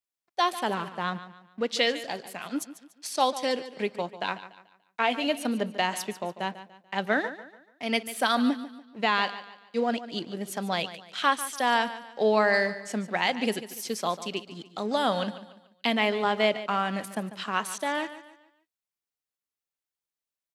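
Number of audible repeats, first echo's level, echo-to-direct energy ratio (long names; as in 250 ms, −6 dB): 3, −14.0 dB, −13.5 dB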